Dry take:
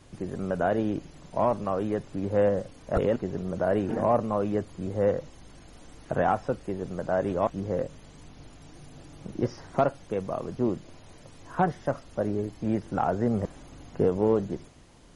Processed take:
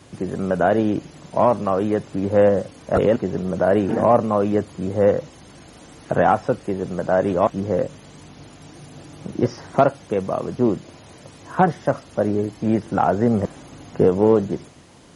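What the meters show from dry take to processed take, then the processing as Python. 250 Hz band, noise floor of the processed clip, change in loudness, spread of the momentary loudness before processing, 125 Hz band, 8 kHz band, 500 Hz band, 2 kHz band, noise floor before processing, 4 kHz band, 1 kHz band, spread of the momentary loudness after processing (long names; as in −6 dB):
+8.0 dB, −46 dBFS, +8.0 dB, 10 LU, +6.5 dB, can't be measured, +8.0 dB, +8.0 dB, −51 dBFS, +8.0 dB, +8.0 dB, 10 LU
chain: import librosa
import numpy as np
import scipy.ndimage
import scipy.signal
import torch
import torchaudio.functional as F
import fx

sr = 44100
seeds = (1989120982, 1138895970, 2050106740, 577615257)

y = scipy.signal.sosfilt(scipy.signal.butter(2, 93.0, 'highpass', fs=sr, output='sos'), x)
y = F.gain(torch.from_numpy(y), 8.0).numpy()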